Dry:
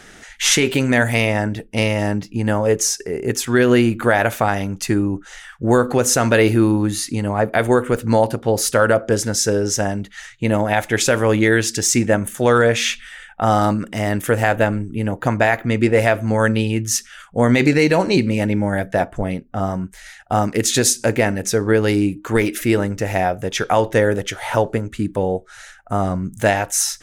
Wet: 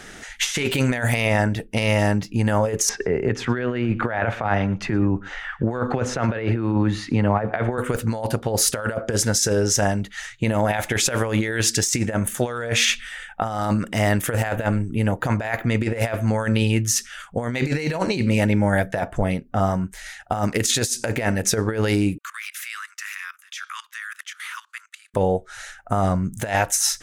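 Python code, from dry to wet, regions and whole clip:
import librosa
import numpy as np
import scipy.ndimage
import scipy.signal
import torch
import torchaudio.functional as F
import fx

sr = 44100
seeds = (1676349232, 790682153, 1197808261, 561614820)

y = fx.chain(x, sr, fx.lowpass(hz=2400.0, slope=12),
    fx.echo_single(ms=117, db=-23.5),
    fx.band_squash(depth_pct=40), at=(2.89, 7.78))
y = fx.chain(y, sr, fx.steep_highpass(hz=1100.0, slope=96),
    fx.level_steps(step_db=18), at=(22.18, 25.14))
y = fx.dynamic_eq(y, sr, hz=310.0, q=1.2, threshold_db=-30.0, ratio=4.0, max_db=-5)
y = fx.over_compress(y, sr, threshold_db=-20.0, ratio=-0.5)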